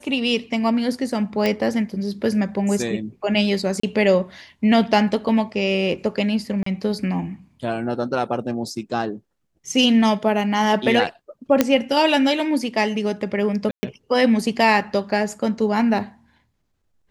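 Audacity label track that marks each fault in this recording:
1.460000	1.460000	pop -8 dBFS
3.800000	3.830000	gap 34 ms
6.630000	6.660000	gap 34 ms
11.610000	11.610000	pop -1 dBFS
13.710000	13.830000	gap 0.12 s

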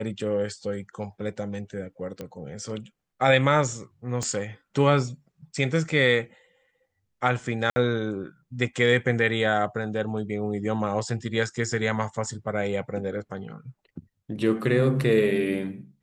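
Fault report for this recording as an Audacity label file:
2.210000	2.210000	pop -21 dBFS
4.230000	4.230000	pop -17 dBFS
7.700000	7.760000	gap 60 ms

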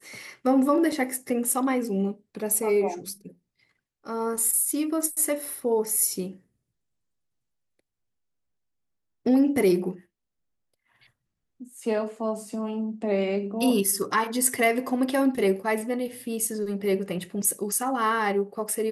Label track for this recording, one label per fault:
0.920000	0.920000	gap 3.1 ms

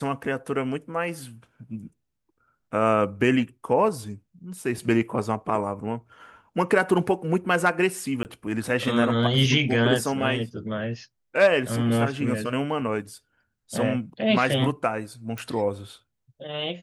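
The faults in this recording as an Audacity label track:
8.230000	8.250000	gap 19 ms
15.380000	15.380000	pop

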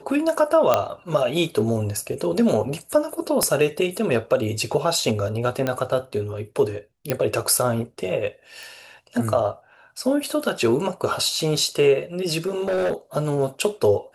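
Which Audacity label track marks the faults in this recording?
0.740000	0.740000	pop -4 dBFS
3.430000	3.430000	pop -8 dBFS
5.670000	5.670000	pop -10 dBFS
7.100000	7.100000	pop -7 dBFS
8.630000	8.630000	pop
12.470000	12.930000	clipped -19 dBFS

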